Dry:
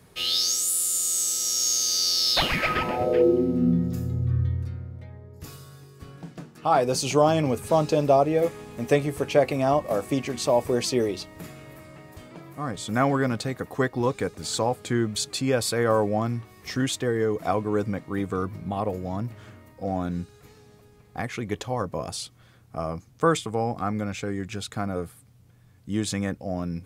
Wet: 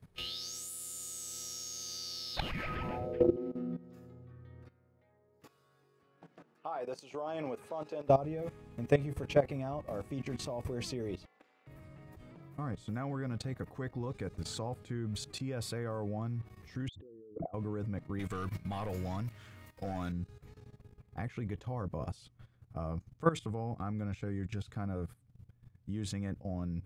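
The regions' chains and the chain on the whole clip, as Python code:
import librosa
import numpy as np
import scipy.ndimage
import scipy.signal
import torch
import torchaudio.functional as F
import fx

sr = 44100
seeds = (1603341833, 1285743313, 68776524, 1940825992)

y = fx.chain(x, sr, fx.highpass(hz=470.0, slope=12),
    fx.high_shelf(hz=3400.0, db=-9.0), at=(3.36, 8.09))
y = fx.chain(y, sr, fx.ring_mod(carrier_hz=130.0),
    fx.bandpass_edges(low_hz=670.0, high_hz=4700.0), at=(11.25, 11.67))
y = fx.chain(y, sr, fx.envelope_sharpen(power=3.0),
    fx.lowpass(hz=1300.0, slope=12),
    fx.over_compress(threshold_db=-36.0, ratio=-1.0), at=(16.88, 17.54))
y = fx.chain(y, sr, fx.tilt_shelf(db=-9.0, hz=1200.0),
    fx.leveller(passes=2), at=(18.19, 20.12))
y = fx.low_shelf(y, sr, hz=140.0, db=12.0)
y = fx.level_steps(y, sr, step_db=16)
y = fx.bass_treble(y, sr, bass_db=2, treble_db=-6)
y = F.gain(torch.from_numpy(y), -6.0).numpy()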